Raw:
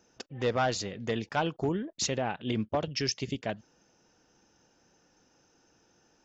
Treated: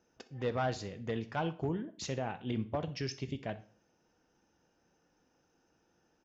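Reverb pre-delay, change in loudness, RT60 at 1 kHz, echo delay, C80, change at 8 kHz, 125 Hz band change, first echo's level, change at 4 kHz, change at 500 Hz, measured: 4 ms, -5.5 dB, 0.45 s, 62 ms, 20.0 dB, n/a, -2.0 dB, -19.5 dB, -10.5 dB, -5.5 dB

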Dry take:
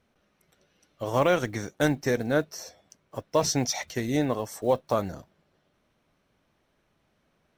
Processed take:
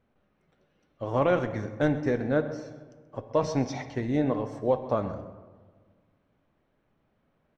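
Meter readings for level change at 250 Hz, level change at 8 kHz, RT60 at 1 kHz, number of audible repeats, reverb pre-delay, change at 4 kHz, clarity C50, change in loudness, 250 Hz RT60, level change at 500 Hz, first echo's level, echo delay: +0.5 dB, -16.5 dB, 1.5 s, 1, 4 ms, -11.5 dB, 10.5 dB, -1.0 dB, 1.9 s, -0.5 dB, -16.0 dB, 0.131 s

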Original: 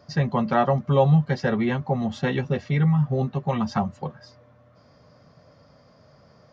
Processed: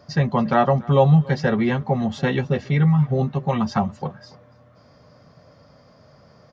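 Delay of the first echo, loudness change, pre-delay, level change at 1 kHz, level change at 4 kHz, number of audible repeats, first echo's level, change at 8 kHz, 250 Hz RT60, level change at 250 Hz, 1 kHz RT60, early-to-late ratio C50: 0.285 s, +3.0 dB, none, +3.0 dB, +3.0 dB, 1, -23.0 dB, n/a, none, +3.0 dB, none, none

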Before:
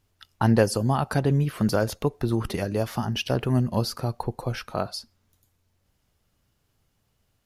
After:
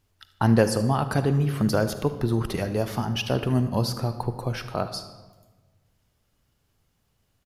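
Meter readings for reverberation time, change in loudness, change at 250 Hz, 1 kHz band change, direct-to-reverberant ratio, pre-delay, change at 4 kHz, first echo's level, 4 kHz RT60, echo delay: 1.3 s, +0.5 dB, +0.5 dB, +0.5 dB, 10.0 dB, 40 ms, +0.5 dB, -17.5 dB, 0.85 s, 76 ms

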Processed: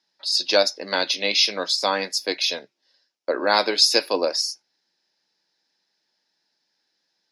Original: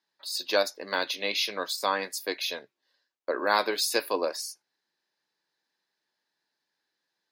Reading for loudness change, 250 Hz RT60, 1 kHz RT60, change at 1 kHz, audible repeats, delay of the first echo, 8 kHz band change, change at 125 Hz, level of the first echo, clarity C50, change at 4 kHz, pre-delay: +8.0 dB, none, none, +4.0 dB, none, none, +7.0 dB, n/a, none, none, +10.5 dB, none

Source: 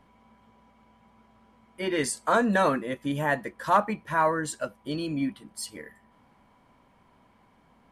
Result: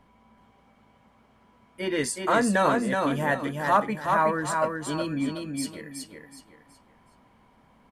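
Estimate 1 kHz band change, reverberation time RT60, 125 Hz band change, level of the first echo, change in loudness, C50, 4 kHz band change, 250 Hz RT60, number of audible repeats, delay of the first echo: +1.5 dB, none, +2.0 dB, -4.0 dB, +1.5 dB, none, +1.5 dB, none, 4, 0.372 s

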